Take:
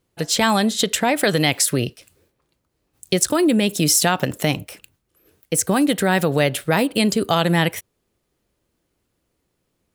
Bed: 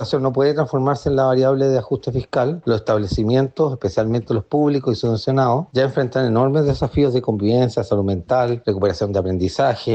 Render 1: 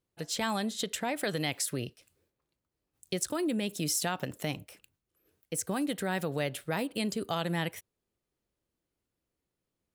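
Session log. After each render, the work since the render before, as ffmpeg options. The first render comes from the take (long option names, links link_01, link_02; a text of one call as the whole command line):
ffmpeg -i in.wav -af "volume=-14dB" out.wav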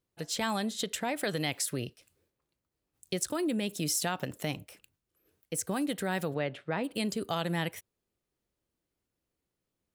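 ffmpeg -i in.wav -filter_complex "[0:a]asplit=3[link_01][link_02][link_03];[link_01]afade=type=out:start_time=6.33:duration=0.02[link_04];[link_02]highpass=120,lowpass=2700,afade=type=in:start_time=6.33:duration=0.02,afade=type=out:start_time=6.83:duration=0.02[link_05];[link_03]afade=type=in:start_time=6.83:duration=0.02[link_06];[link_04][link_05][link_06]amix=inputs=3:normalize=0" out.wav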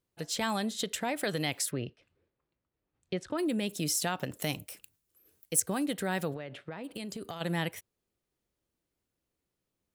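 ffmpeg -i in.wav -filter_complex "[0:a]asplit=3[link_01][link_02][link_03];[link_01]afade=type=out:start_time=1.7:duration=0.02[link_04];[link_02]lowpass=2700,afade=type=in:start_time=1.7:duration=0.02,afade=type=out:start_time=3.37:duration=0.02[link_05];[link_03]afade=type=in:start_time=3.37:duration=0.02[link_06];[link_04][link_05][link_06]amix=inputs=3:normalize=0,asettb=1/sr,asplit=3[link_07][link_08][link_09];[link_07]atrim=end=4.424[link_10];[link_08]atrim=start=4.42:end=5.6,asetpts=PTS-STARTPTS,afade=type=in:duration=0.004:curve=qsin,afade=type=out:start_time=1.176:duration=0.004:curve=qsin,highshelf=frequency=5300:gain=11.5[link_11];[link_09]atrim=start=5.596[link_12];[link_10][link_11]acrossfade=duration=0.004:curve1=hsin:curve2=qsin[link_13];[link_13][link_12]acrossfade=duration=0.004:curve1=qsin:curve2=hsin,asplit=3[link_14][link_15][link_16];[link_14]afade=type=out:start_time=6.34:duration=0.02[link_17];[link_15]acompressor=threshold=-35dB:ratio=12:attack=3.2:release=140:knee=1:detection=peak,afade=type=in:start_time=6.34:duration=0.02,afade=type=out:start_time=7.4:duration=0.02[link_18];[link_16]afade=type=in:start_time=7.4:duration=0.02[link_19];[link_17][link_18][link_19]amix=inputs=3:normalize=0" out.wav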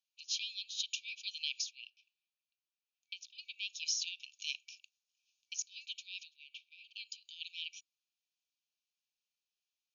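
ffmpeg -i in.wav -af "afftfilt=real='re*between(b*sr/4096,2300,6900)':imag='im*between(b*sr/4096,2300,6900)':win_size=4096:overlap=0.75" out.wav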